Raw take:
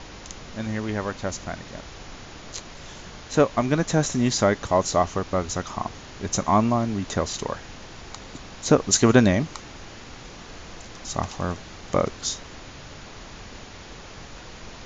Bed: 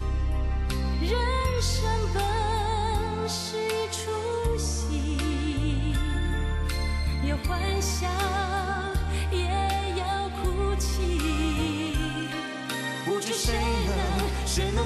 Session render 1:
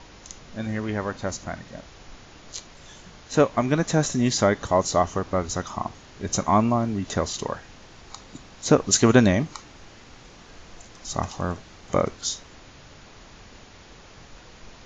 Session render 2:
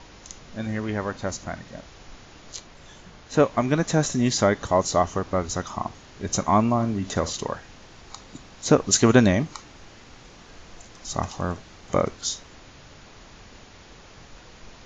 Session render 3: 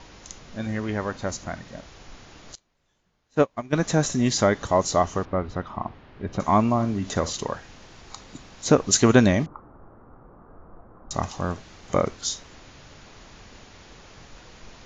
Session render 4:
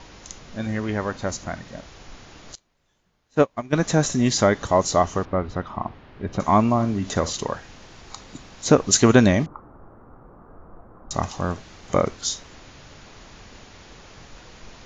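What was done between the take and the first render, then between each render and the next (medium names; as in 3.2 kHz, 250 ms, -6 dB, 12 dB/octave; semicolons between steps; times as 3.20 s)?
noise print and reduce 6 dB
2.56–3.43 s: treble shelf 4.3 kHz -5.5 dB; 6.73–7.35 s: flutter echo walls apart 10.5 m, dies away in 0.25 s
2.55–3.73 s: upward expansion 2.5:1, over -30 dBFS; 5.25–6.40 s: distance through air 390 m; 9.46–11.11 s: Chebyshev low-pass 1.3 kHz, order 4
trim +2 dB; peak limiter -1 dBFS, peak gain reduction 1 dB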